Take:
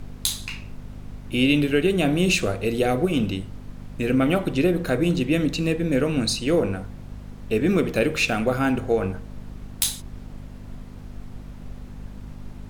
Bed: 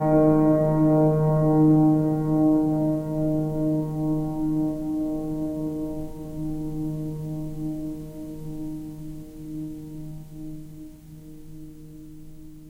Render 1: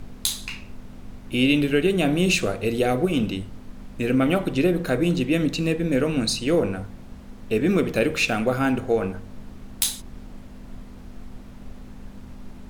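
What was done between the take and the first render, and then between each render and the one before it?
de-hum 50 Hz, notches 3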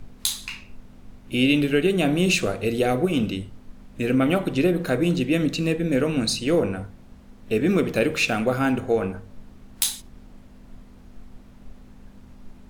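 noise print and reduce 6 dB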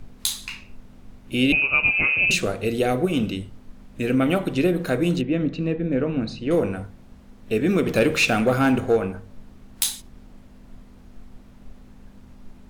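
1.52–2.31 inverted band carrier 2800 Hz; 5.21–6.51 tape spacing loss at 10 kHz 31 dB; 7.86–8.97 sample leveller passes 1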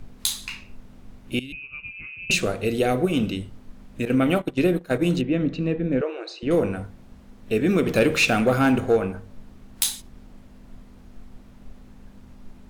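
1.39–2.3 passive tone stack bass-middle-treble 6-0-2; 4.05–5.02 gate -25 dBFS, range -17 dB; 6.01–6.43 brick-wall FIR band-pass 320–8900 Hz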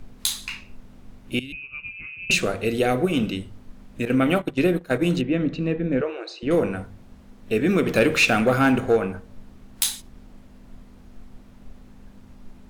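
notches 50/100/150 Hz; dynamic EQ 1700 Hz, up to +3 dB, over -38 dBFS, Q 0.95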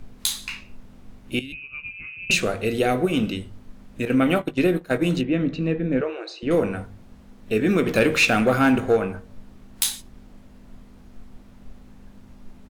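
doubler 19 ms -14 dB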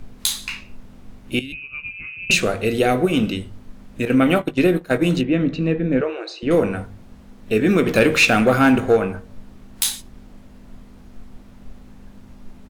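gain +3.5 dB; limiter -2 dBFS, peak gain reduction 2 dB

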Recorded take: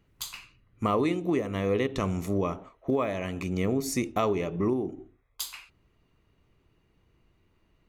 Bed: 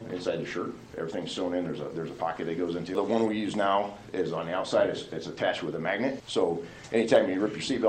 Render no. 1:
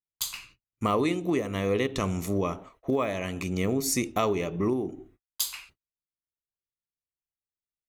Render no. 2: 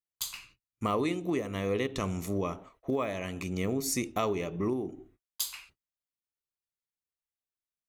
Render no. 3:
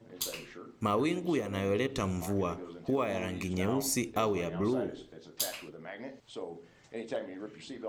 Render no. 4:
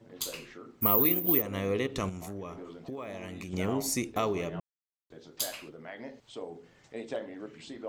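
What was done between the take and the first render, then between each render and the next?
gate -56 dBFS, range -42 dB; high shelf 3300 Hz +7.5 dB
gain -4 dB
add bed -15 dB
0.81–1.42 careless resampling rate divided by 3×, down filtered, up zero stuff; 2.09–3.53 compressor 3:1, threshold -38 dBFS; 4.6–5.1 mute

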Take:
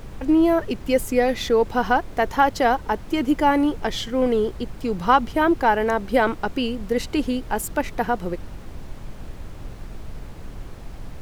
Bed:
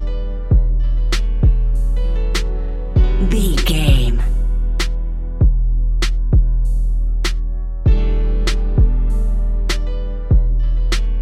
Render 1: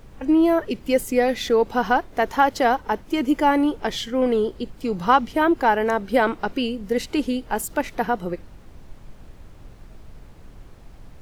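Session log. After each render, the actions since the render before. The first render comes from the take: noise print and reduce 8 dB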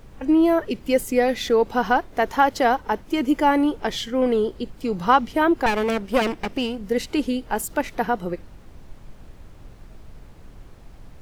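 5.66–6.79 minimum comb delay 0.37 ms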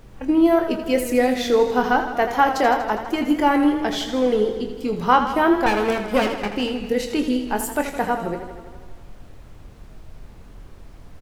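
doubler 24 ms -8.5 dB; warbling echo 81 ms, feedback 71%, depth 72 cents, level -10 dB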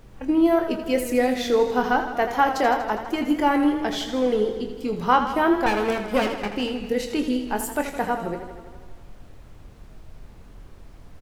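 gain -2.5 dB

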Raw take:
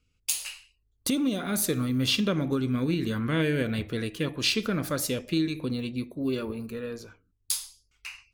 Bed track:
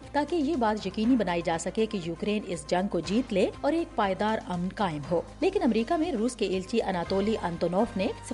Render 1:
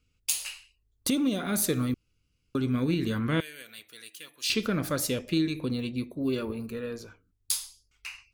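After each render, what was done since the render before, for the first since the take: 1.94–2.55 room tone; 3.4–4.5 differentiator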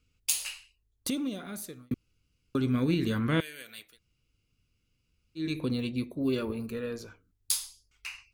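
0.51–1.91 fade out; 3.91–5.43 room tone, crossfade 0.16 s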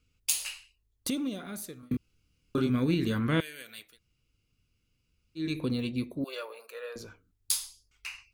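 1.8–2.7 doubler 28 ms -2 dB; 6.24–6.96 elliptic high-pass 520 Hz, stop band 80 dB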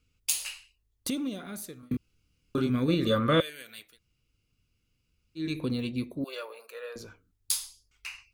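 2.88–3.5 small resonant body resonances 550/1200/3500 Hz, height 17 dB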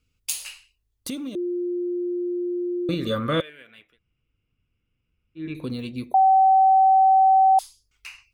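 1.35–2.89 bleep 353 Hz -23.5 dBFS; 3.41–5.55 polynomial smoothing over 25 samples; 6.14–7.59 bleep 766 Hz -12.5 dBFS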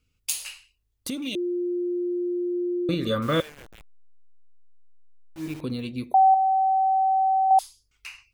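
1.22–2.54 resonant high shelf 1900 Hz +10 dB, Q 3; 3.22–5.61 level-crossing sampler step -39.5 dBFS; 6.34–7.51 resonator 120 Hz, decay 0.63 s, mix 50%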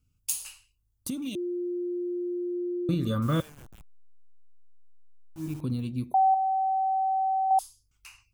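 graphic EQ 125/500/2000/4000 Hz +5/-9/-11/-7 dB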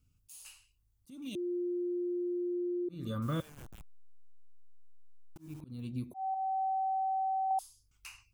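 auto swell 0.501 s; compressor 2.5:1, threshold -34 dBFS, peak gain reduction 9.5 dB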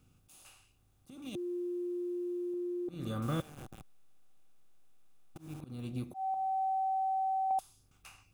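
per-bin compression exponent 0.6; upward expander 1.5:1, over -48 dBFS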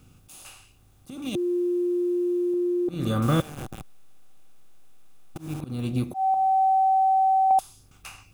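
gain +12 dB

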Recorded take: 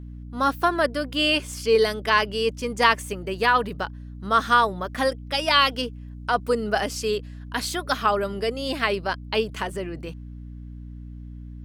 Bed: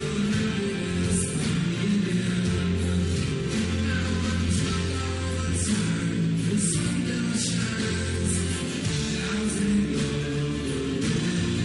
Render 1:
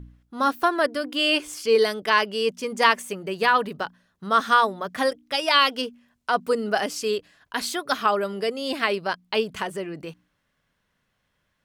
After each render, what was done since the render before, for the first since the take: de-hum 60 Hz, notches 5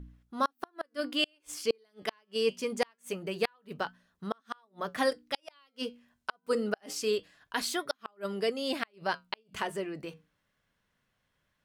flange 0.24 Hz, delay 4.2 ms, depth 5.9 ms, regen -77%; flipped gate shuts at -16 dBFS, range -40 dB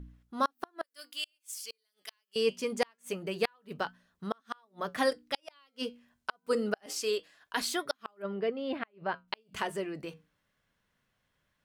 0.83–2.36 differentiator; 6.86–7.57 tone controls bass -13 dB, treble +1 dB; 8.22–9.28 air absorption 460 m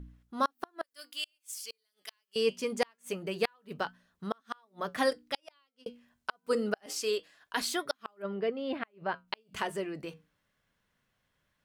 5.28–5.86 fade out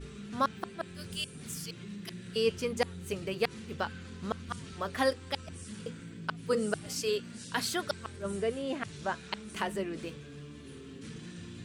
add bed -19.5 dB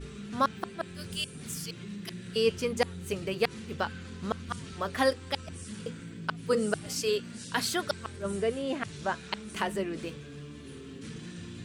gain +2.5 dB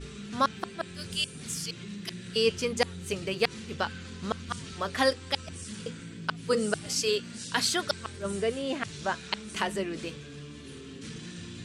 Bessel low-pass 6800 Hz, order 2; high shelf 3200 Hz +9.5 dB

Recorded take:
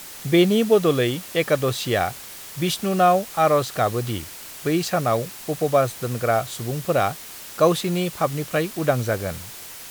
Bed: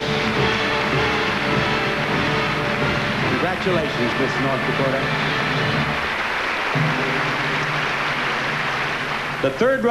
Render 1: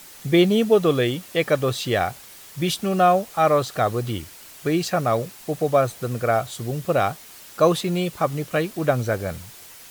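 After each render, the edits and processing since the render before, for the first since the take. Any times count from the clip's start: denoiser 6 dB, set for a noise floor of -39 dBFS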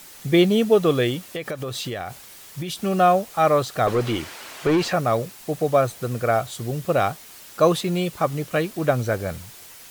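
1.17–2.78 compressor 12:1, threshold -25 dBFS; 3.87–4.93 overdrive pedal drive 22 dB, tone 1500 Hz, clips at -11 dBFS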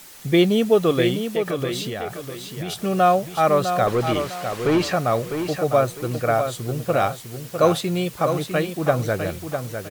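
feedback echo 0.653 s, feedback 32%, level -7.5 dB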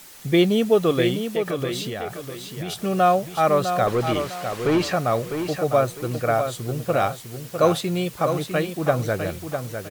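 gain -1 dB

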